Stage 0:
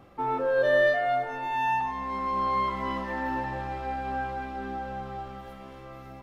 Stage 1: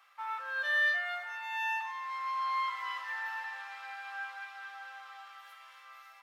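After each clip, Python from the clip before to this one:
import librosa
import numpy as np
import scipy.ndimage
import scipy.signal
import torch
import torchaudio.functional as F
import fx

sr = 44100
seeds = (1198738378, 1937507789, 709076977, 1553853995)

y = scipy.signal.sosfilt(scipy.signal.butter(4, 1200.0, 'highpass', fs=sr, output='sos'), x)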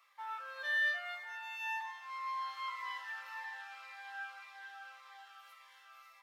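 y = fx.notch_cascade(x, sr, direction='falling', hz=1.8)
y = y * librosa.db_to_amplitude(-2.5)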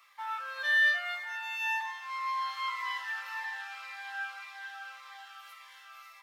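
y = fx.highpass(x, sr, hz=930.0, slope=6)
y = y * librosa.db_to_amplitude(8.5)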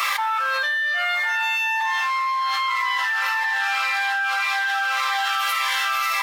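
y = fx.env_flatten(x, sr, amount_pct=100)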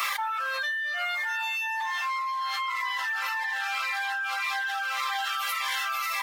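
y = fx.dereverb_blind(x, sr, rt60_s=0.63)
y = fx.high_shelf(y, sr, hz=8800.0, db=4.5)
y = fx.comb_fb(y, sr, f0_hz=350.0, decay_s=0.65, harmonics='all', damping=0.0, mix_pct=50)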